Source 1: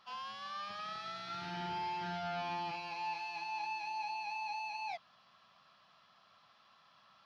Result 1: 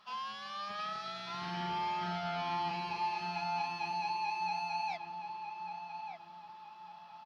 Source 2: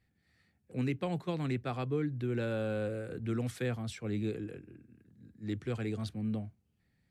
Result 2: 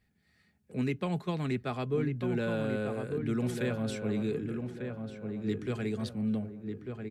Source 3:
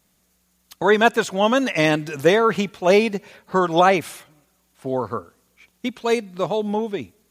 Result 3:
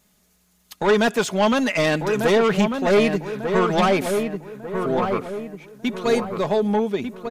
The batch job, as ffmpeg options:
ffmpeg -i in.wav -filter_complex "[0:a]asoftclip=type=tanh:threshold=-16.5dB,aecho=1:1:4.8:0.35,asplit=2[link_01][link_02];[link_02]adelay=1196,lowpass=frequency=1600:poles=1,volume=-5.5dB,asplit=2[link_03][link_04];[link_04]adelay=1196,lowpass=frequency=1600:poles=1,volume=0.43,asplit=2[link_05][link_06];[link_06]adelay=1196,lowpass=frequency=1600:poles=1,volume=0.43,asplit=2[link_07][link_08];[link_08]adelay=1196,lowpass=frequency=1600:poles=1,volume=0.43,asplit=2[link_09][link_10];[link_10]adelay=1196,lowpass=frequency=1600:poles=1,volume=0.43[link_11];[link_03][link_05][link_07][link_09][link_11]amix=inputs=5:normalize=0[link_12];[link_01][link_12]amix=inputs=2:normalize=0,volume=2dB" out.wav

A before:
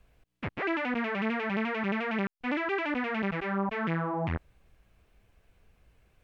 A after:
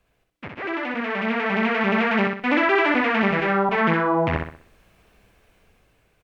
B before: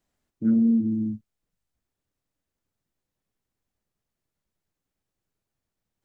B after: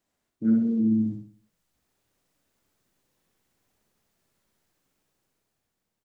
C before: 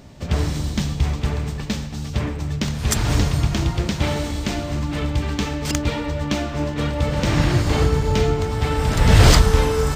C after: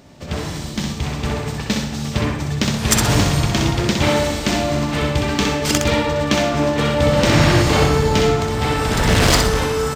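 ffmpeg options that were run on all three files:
ffmpeg -i in.wav -filter_complex "[0:a]asoftclip=type=hard:threshold=-10dB,lowshelf=frequency=110:gain=-11,asplit=2[link_01][link_02];[link_02]aecho=0:1:63|126|189|252|315:0.596|0.22|0.0815|0.0302|0.0112[link_03];[link_01][link_03]amix=inputs=2:normalize=0,dynaudnorm=framelen=400:gausssize=7:maxgain=11dB" out.wav

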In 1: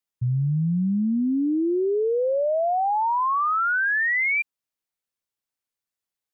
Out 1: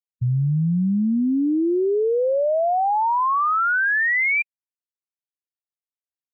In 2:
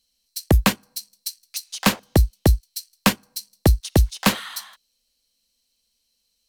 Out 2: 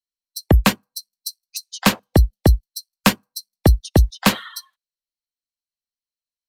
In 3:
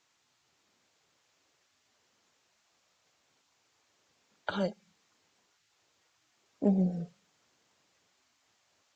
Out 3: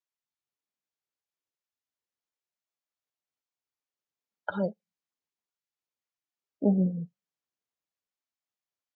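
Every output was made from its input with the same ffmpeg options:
ffmpeg -i in.wav -af "afftdn=noise_reduction=29:noise_floor=-33,volume=2.5dB" out.wav

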